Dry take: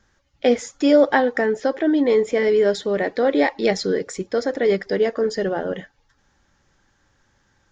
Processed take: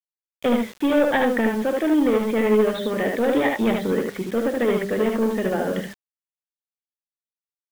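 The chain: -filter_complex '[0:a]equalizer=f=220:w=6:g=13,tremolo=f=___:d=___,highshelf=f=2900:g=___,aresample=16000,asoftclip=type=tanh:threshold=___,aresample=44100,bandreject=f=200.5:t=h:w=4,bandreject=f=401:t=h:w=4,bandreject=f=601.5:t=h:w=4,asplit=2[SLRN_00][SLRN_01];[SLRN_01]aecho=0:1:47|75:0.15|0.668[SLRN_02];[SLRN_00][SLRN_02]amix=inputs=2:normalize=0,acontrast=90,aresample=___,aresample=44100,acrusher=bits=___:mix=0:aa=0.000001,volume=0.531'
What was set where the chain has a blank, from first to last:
13, 0.39, 4.5, 0.141, 8000, 5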